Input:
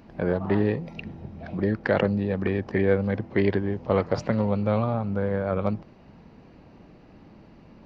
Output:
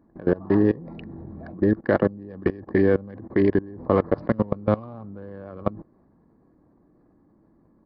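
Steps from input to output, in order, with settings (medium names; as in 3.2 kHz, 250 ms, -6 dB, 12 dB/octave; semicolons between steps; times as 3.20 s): local Wiener filter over 15 samples; peaking EQ 2.9 kHz -8 dB 0.82 oct; small resonant body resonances 310/1100/1700/2900 Hz, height 8 dB, ringing for 25 ms; level held to a coarse grid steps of 21 dB; resampled via 11.025 kHz; trim +3.5 dB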